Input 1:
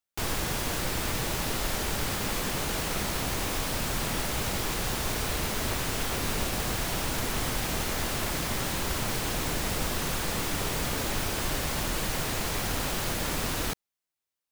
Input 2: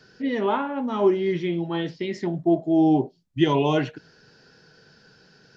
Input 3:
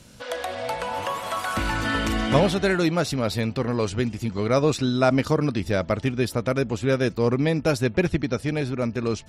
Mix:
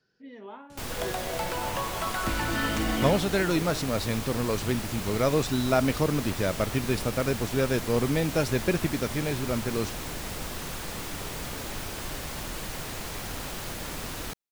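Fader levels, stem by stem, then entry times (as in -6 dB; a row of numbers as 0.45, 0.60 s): -5.5, -20.0, -4.0 dB; 0.60, 0.00, 0.70 s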